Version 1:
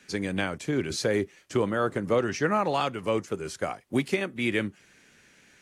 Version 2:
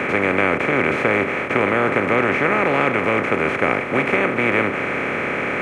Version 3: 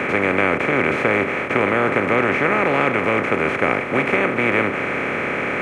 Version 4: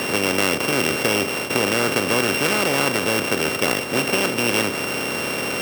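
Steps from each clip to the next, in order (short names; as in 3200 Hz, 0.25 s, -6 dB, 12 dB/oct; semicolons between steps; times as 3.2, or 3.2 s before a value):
per-bin compression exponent 0.2; resonant high shelf 3300 Hz -12.5 dB, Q 3; gain -1.5 dB
nothing audible
sample sorter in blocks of 16 samples; gain -2 dB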